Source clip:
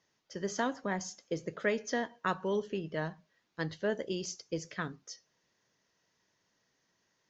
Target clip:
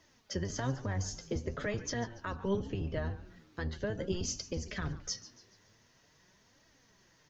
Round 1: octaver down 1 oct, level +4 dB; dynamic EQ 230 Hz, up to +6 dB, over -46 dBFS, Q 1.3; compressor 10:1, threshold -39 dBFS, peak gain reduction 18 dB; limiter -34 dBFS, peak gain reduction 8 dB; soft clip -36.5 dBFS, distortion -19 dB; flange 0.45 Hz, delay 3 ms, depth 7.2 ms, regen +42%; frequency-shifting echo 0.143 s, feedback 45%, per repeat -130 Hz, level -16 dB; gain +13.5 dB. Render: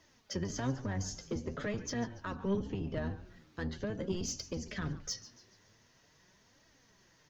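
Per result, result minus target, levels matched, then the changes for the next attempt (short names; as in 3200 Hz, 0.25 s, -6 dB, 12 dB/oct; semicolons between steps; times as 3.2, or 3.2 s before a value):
soft clip: distortion +22 dB; 250 Hz band +2.5 dB
change: soft clip -24.5 dBFS, distortion -41 dB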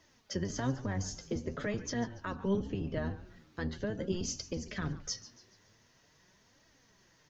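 250 Hz band +2.5 dB
change: dynamic EQ 62 Hz, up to +6 dB, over -46 dBFS, Q 1.3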